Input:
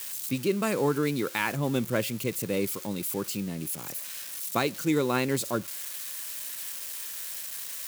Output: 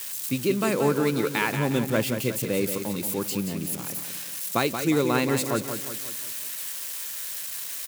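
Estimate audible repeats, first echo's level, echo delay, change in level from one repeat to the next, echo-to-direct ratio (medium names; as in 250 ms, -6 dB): 5, -8.0 dB, 179 ms, -6.0 dB, -7.0 dB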